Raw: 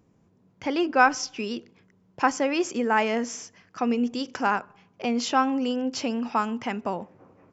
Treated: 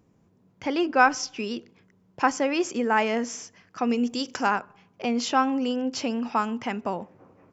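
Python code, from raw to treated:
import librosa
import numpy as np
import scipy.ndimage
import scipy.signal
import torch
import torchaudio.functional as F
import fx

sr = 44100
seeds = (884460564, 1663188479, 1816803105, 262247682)

y = fx.high_shelf(x, sr, hz=5700.0, db=11.5, at=(3.89, 4.49))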